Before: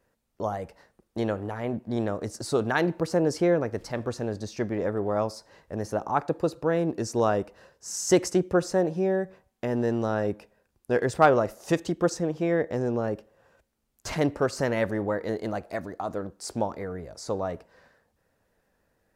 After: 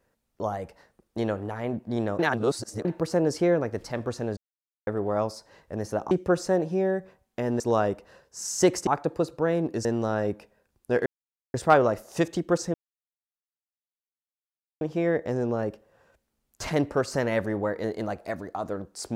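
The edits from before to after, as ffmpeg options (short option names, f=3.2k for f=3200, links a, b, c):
-filter_complex "[0:a]asplit=11[a][b][c][d][e][f][g][h][i][j][k];[a]atrim=end=2.192[l];[b]atrim=start=2.188:end=2.852,asetpts=PTS-STARTPTS,areverse[m];[c]atrim=start=2.848:end=4.37,asetpts=PTS-STARTPTS,afade=t=out:st=1.518:d=0.004:c=hsin[n];[d]atrim=start=4.37:end=4.87,asetpts=PTS-STARTPTS,volume=0[o];[e]atrim=start=4.87:end=6.112,asetpts=PTS-STARTPTS,afade=t=in:d=0.004:c=hsin[p];[f]atrim=start=8.358:end=9.852[q];[g]atrim=start=7.088:end=8.362[r];[h]atrim=start=6.108:end=7.092[s];[i]atrim=start=9.848:end=11.06,asetpts=PTS-STARTPTS,afade=t=out:st=1.208:d=0.004:c=hsin,apad=pad_dur=0.48[t];[j]atrim=start=11.06:end=12.26,asetpts=PTS-STARTPTS,afade=t=in:d=0.004:c=hsin,afade=t=out:st=1.196:d=0.004:c=hsin,apad=pad_dur=2.07[u];[k]atrim=start=12.26,asetpts=PTS-STARTPTS,afade=t=in:d=0.004:c=hsin[v];[l][m]acrossfade=d=0.004:c1=hsin:c2=hsin[w];[n][o][p]concat=n=3:v=0:a=1[x];[w][x]acrossfade=d=0.004:c1=hsin:c2=hsin[y];[y][q]acrossfade=d=0.004:c1=hsin:c2=hsin[z];[z][r]acrossfade=d=0.004:c1=hsin:c2=hsin[aa];[aa][s]acrossfade=d=0.004:c1=hsin:c2=hsin[ab];[t][u][v]concat=n=3:v=0:a=1[ac];[ab][ac]acrossfade=d=0.004:c1=hsin:c2=hsin"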